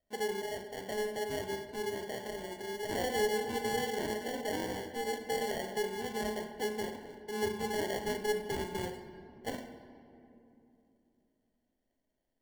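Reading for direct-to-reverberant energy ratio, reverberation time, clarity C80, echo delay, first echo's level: 7.0 dB, 2.9 s, 10.5 dB, no echo, no echo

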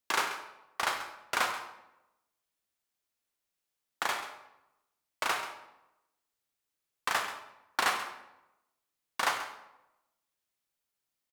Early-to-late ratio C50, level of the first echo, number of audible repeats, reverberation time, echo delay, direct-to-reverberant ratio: 7.0 dB, -14.0 dB, 1, 0.95 s, 135 ms, 5.0 dB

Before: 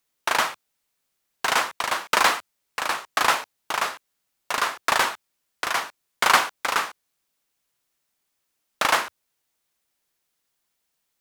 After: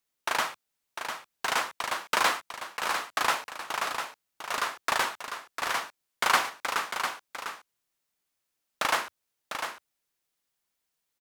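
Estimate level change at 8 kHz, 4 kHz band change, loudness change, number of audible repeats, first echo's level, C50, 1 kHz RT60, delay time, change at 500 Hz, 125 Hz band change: -5.5 dB, -5.5 dB, -6.5 dB, 1, -7.5 dB, no reverb, no reverb, 700 ms, -5.0 dB, -5.0 dB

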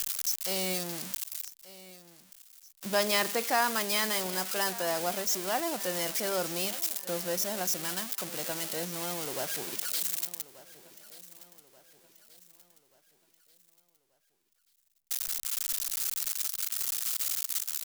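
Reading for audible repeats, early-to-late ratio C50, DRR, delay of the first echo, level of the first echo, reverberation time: 3, no reverb, no reverb, 1183 ms, -18.5 dB, no reverb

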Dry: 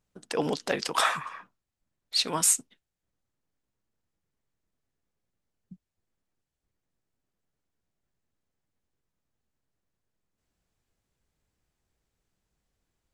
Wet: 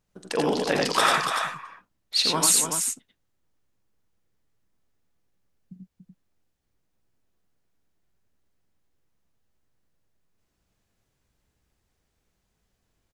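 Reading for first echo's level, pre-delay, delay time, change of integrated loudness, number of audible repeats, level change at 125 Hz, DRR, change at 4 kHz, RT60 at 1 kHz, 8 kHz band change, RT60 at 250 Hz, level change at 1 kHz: -11.5 dB, no reverb, 44 ms, +4.0 dB, 4, +5.0 dB, no reverb, +6.0 dB, no reverb, +4.5 dB, no reverb, +6.0 dB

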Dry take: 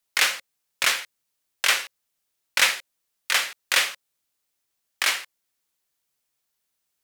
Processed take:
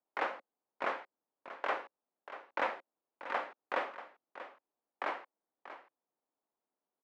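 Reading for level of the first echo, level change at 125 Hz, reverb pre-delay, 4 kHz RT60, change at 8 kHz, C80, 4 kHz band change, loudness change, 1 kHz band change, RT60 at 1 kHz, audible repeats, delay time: -13.0 dB, no reading, no reverb, no reverb, under -40 dB, no reverb, -28.5 dB, -16.5 dB, -4.0 dB, no reverb, 1, 637 ms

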